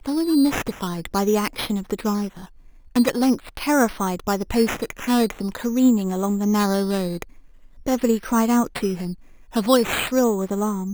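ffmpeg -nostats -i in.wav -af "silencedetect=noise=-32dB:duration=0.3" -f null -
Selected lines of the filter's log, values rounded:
silence_start: 2.45
silence_end: 2.96 | silence_duration: 0.50
silence_start: 7.23
silence_end: 7.87 | silence_duration: 0.64
silence_start: 9.13
silence_end: 9.54 | silence_duration: 0.41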